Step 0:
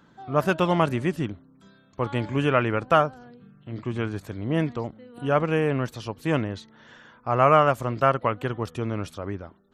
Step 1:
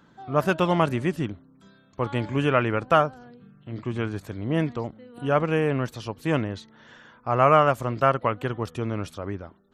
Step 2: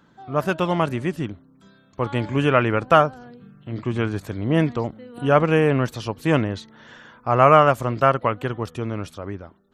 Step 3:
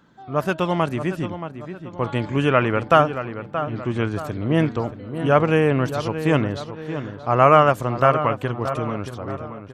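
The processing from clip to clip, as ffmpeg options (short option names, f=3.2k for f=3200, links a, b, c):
-af anull
-af "dynaudnorm=f=370:g=11:m=11.5dB"
-filter_complex "[0:a]asplit=2[a][b];[b]adelay=627,lowpass=f=2.3k:p=1,volume=-10dB,asplit=2[c][d];[d]adelay=627,lowpass=f=2.3k:p=1,volume=0.46,asplit=2[e][f];[f]adelay=627,lowpass=f=2.3k:p=1,volume=0.46,asplit=2[g][h];[h]adelay=627,lowpass=f=2.3k:p=1,volume=0.46,asplit=2[i][j];[j]adelay=627,lowpass=f=2.3k:p=1,volume=0.46[k];[a][c][e][g][i][k]amix=inputs=6:normalize=0"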